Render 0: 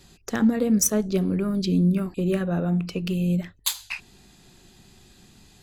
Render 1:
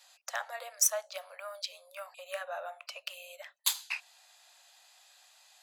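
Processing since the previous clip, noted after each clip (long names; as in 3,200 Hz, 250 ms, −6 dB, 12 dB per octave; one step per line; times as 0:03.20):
Butterworth high-pass 570 Hz 96 dB per octave
level −3.5 dB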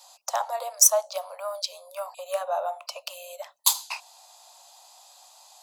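drawn EQ curve 340 Hz 0 dB, 980 Hz +9 dB, 1,700 Hz −12 dB, 5,200 Hz +3 dB
level +6.5 dB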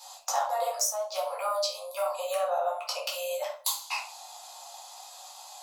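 downward compressor 12 to 1, threshold −31 dBFS, peak gain reduction 20 dB
convolution reverb RT60 0.45 s, pre-delay 8 ms, DRR −4 dB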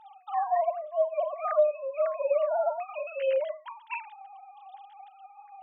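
three sine waves on the formant tracks
level +2.5 dB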